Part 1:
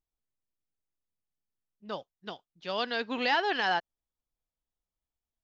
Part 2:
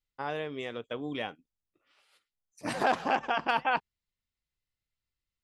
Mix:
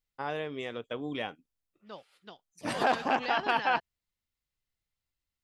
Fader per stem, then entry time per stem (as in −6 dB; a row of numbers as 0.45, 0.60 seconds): −8.5, 0.0 decibels; 0.00, 0.00 seconds